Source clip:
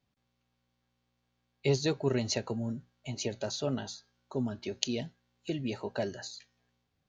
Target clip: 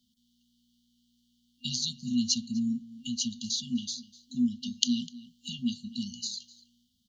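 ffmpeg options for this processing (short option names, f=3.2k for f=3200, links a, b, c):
-filter_complex "[0:a]lowshelf=f=200:t=q:w=3:g=-11,asplit=2[a][b];[b]adelay=250.7,volume=-21dB,highshelf=f=4k:g=-5.64[c];[a][c]amix=inputs=2:normalize=0,afftfilt=real='re*(1-between(b*sr/4096,250,2800))':imag='im*(1-between(b*sr/4096,250,2800))':win_size=4096:overlap=0.75,asplit=2[d][e];[e]acompressor=threshold=-50dB:ratio=6,volume=2.5dB[f];[d][f]amix=inputs=2:normalize=0,volume=5dB"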